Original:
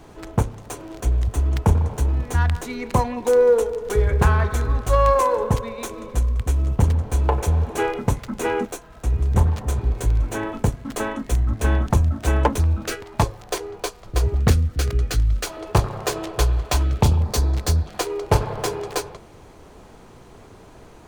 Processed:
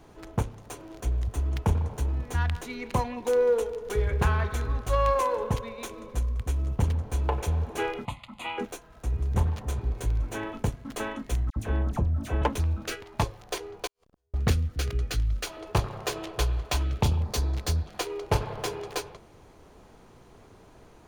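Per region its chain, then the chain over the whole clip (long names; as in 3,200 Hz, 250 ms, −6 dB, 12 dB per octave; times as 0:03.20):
0:08.05–0:08.58: low-pass filter 5,500 Hz + spectral tilt +2.5 dB per octave + phaser with its sweep stopped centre 1,600 Hz, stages 6
0:11.50–0:12.42: tilt shelving filter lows +4.5 dB, about 1,300 Hz + downward compressor 1.5 to 1, threshold −22 dBFS + all-pass dispersion lows, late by 62 ms, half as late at 1,600 Hz
0:13.87–0:14.34: tuned comb filter 81 Hz, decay 0.52 s, mix 90% + gate with flip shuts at −34 dBFS, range −41 dB + saturating transformer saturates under 640 Hz
whole clip: notch filter 7,900 Hz, Q 13; dynamic equaliser 2,900 Hz, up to +5 dB, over −43 dBFS, Q 1.2; level −7.5 dB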